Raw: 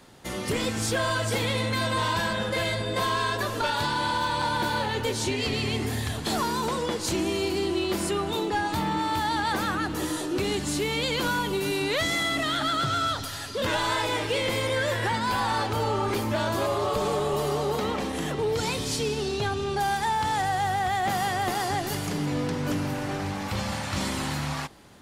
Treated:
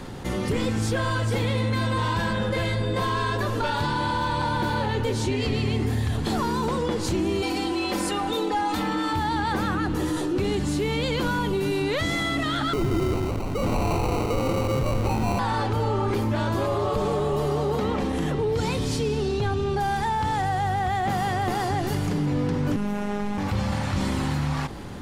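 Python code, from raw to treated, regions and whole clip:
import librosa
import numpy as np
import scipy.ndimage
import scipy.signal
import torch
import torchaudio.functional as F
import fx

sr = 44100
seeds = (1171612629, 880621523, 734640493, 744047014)

y = fx.chain(x, sr, fx.bass_treble(bass_db=-12, treble_db=2),
    fx.comb(ms=3.9, depth=0.91), at=(7.42, 9.13))
y = fx.chain(y, sr, fx.echo_single(ms=166, db=-6.5),
    fx.sample_hold(seeds[0], rate_hz=1700.0, jitter_pct=0), at=(12.73, 15.39))
y = fx.chain(y, sr, fx.robotise(hz=205.0),
    fx.peak_eq(hz=4600.0, db=-7.0, octaves=0.23), at=(22.76, 23.38))
y = fx.tilt_eq(y, sr, slope=-2.0)
y = fx.notch(y, sr, hz=640.0, q=12.0)
y = fx.env_flatten(y, sr, amount_pct=50)
y = F.gain(torch.from_numpy(y), -2.5).numpy()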